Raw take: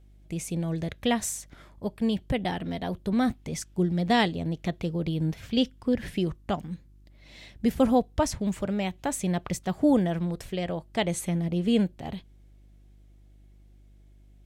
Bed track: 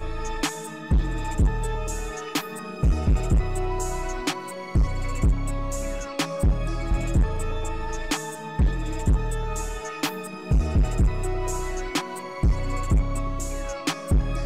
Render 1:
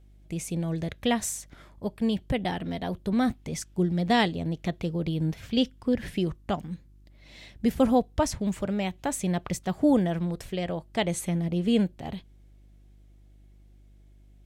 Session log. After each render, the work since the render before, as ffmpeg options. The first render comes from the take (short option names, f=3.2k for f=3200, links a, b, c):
-af anull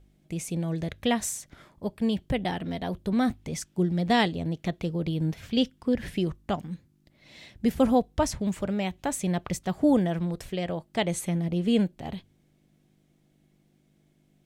-af "bandreject=f=50:t=h:w=4,bandreject=f=100:t=h:w=4"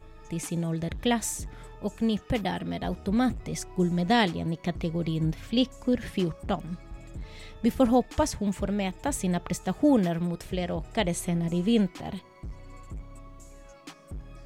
-filter_complex "[1:a]volume=-19dB[a];[0:a][a]amix=inputs=2:normalize=0"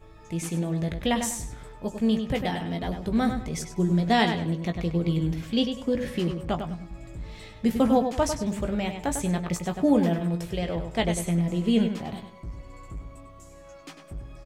-filter_complex "[0:a]asplit=2[a][b];[b]adelay=18,volume=-8dB[c];[a][c]amix=inputs=2:normalize=0,asplit=2[d][e];[e]adelay=99,lowpass=f=4.6k:p=1,volume=-7dB,asplit=2[f][g];[g]adelay=99,lowpass=f=4.6k:p=1,volume=0.3,asplit=2[h][i];[i]adelay=99,lowpass=f=4.6k:p=1,volume=0.3,asplit=2[j][k];[k]adelay=99,lowpass=f=4.6k:p=1,volume=0.3[l];[d][f][h][j][l]amix=inputs=5:normalize=0"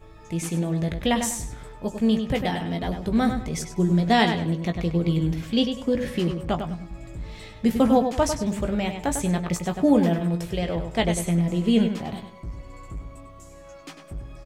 -af "volume=2.5dB"